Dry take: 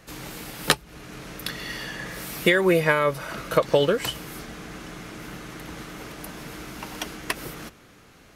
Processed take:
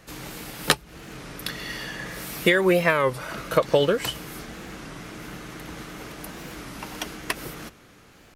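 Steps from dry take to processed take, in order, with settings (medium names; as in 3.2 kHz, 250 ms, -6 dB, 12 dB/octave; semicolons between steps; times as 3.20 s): warped record 33 1/3 rpm, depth 160 cents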